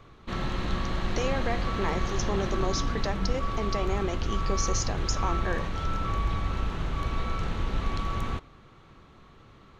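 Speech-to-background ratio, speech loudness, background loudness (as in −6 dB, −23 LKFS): −1.5 dB, −33.5 LKFS, −32.0 LKFS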